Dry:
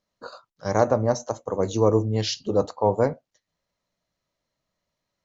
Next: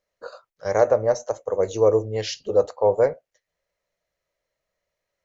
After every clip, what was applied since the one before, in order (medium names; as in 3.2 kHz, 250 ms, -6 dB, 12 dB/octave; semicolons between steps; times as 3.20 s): graphic EQ 125/250/500/1000/2000/4000 Hz -6/-12/+8/-5/+5/-5 dB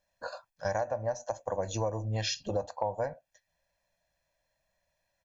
comb 1.2 ms, depth 85%; compression 10:1, threshold -28 dBFS, peak gain reduction 17 dB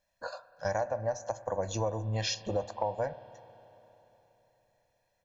spring tank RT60 3.8 s, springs 31/54 ms, chirp 70 ms, DRR 15.5 dB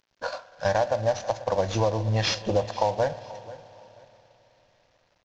CVSD coder 32 kbps; feedback delay 485 ms, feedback 29%, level -18.5 dB; trim +8 dB